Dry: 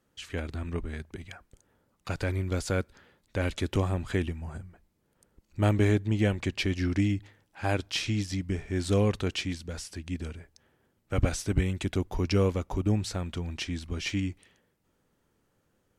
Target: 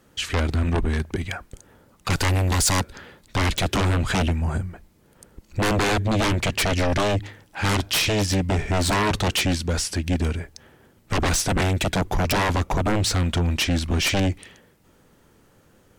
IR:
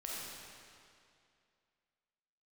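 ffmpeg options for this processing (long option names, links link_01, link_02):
-filter_complex "[0:a]aeval=exprs='0.282*sin(PI/2*7.94*val(0)/0.282)':channel_layout=same,asettb=1/sr,asplit=3[link_01][link_02][link_03];[link_01]atrim=end=2.104[link_04];[link_02]atrim=start=2.1:end=2.8,asetpts=PTS-STARTPTS,afade=type=in:duration=0.004:curve=qsin,afade=type=out:start_time=0.696:duration=0.004:curve=qsin,highshelf=frequency=6900:gain=9.5[link_05];[link_03]atrim=start=2.796[link_06];[link_04][link_05]acrossfade=duration=0.004:curve1=hsin:curve2=qsin[link_07];[link_07][link_06]acrossfade=duration=0.004:curve1=qsin:curve2=hsin,volume=-6.5dB"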